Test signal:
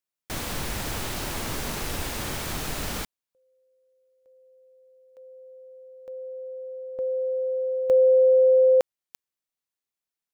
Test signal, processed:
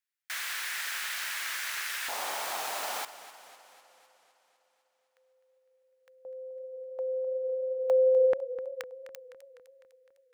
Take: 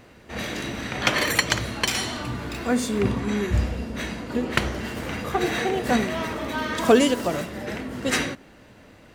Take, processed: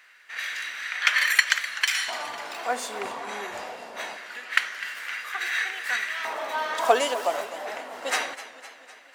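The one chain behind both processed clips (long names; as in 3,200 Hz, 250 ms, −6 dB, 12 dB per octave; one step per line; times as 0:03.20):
auto-filter high-pass square 0.24 Hz 750–1,700 Hz
feedback echo with a swinging delay time 253 ms, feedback 61%, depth 94 cents, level −15 dB
level −3 dB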